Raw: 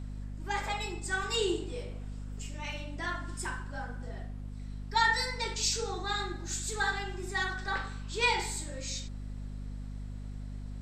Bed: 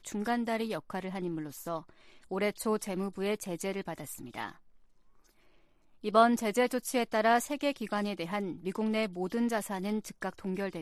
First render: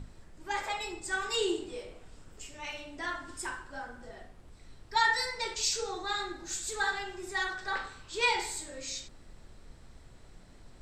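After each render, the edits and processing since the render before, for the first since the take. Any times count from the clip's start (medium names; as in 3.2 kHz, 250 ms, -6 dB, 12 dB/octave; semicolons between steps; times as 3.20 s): hum notches 50/100/150/200/250/300 Hz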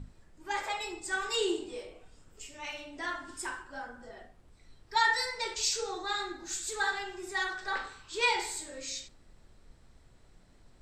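noise print and reduce 6 dB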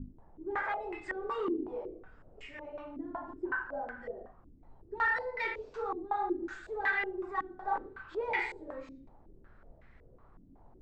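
saturation -31 dBFS, distortion -8 dB; step-sequenced low-pass 5.4 Hz 280–2000 Hz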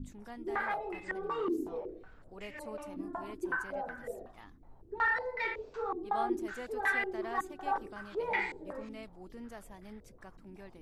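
add bed -16.5 dB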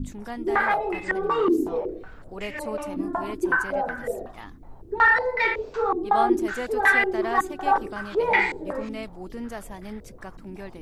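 trim +12 dB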